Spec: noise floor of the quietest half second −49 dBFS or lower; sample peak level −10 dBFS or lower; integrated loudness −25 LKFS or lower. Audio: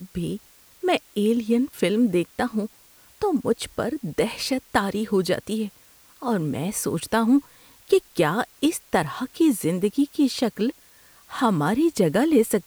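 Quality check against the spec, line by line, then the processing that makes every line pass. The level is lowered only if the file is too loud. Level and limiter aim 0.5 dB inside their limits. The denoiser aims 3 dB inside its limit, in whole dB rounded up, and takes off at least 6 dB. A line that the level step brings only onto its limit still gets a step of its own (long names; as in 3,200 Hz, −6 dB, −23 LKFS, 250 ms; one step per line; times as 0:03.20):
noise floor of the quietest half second −53 dBFS: in spec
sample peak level −3.5 dBFS: out of spec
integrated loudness −23.5 LKFS: out of spec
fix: level −2 dB
brickwall limiter −10.5 dBFS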